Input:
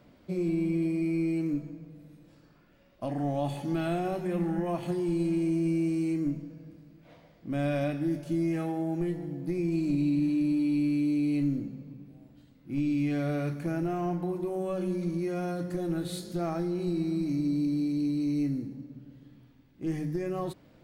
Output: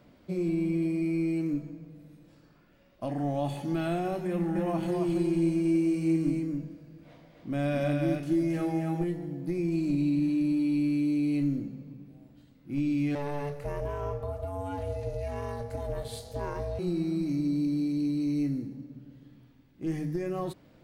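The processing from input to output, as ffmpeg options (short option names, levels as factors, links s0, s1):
-filter_complex "[0:a]asettb=1/sr,asplit=3[s0][s1][s2];[s0]atrim=end=4.284[s3];[s1]atrim=start=4.28:end=9.04,asetpts=PTS-STARTPTS,afade=t=in:d=0.004:c=qsin,afade=t=out:st=4.756:d=0.004:c=qsin,aecho=1:1:271:0.668,atrim=end_sample=209916[s4];[s2]atrim=start=9.036[s5];[s3][s4]acrossfade=d=0.004:c1=hsin:c2=qsin[s6];[s6][s5]acrossfade=d=0.004:c1=qsin:c2=hsin,asettb=1/sr,asplit=3[s7][s8][s9];[s7]atrim=end=13.154[s10];[s8]atrim=start=13.15:end=16.79,asetpts=PTS-STARTPTS,afade=t=in:d=0.004:c=qsin,afade=t=out:st=3.636:d=0.004:c=qsin,aeval=exprs='val(0)*sin(2*PI*290*n/s)':c=same[s11];[s9]atrim=start=16.786[s12];[s10][s11]acrossfade=d=0.004:c1=hsin:c2=qsin[s13];[s13][s12]acrossfade=d=0.004:c1=qsin:c2=hsin"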